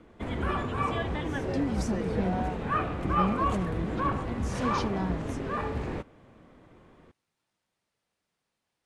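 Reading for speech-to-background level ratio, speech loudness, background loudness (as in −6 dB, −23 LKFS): −3.5 dB, −34.5 LKFS, −31.0 LKFS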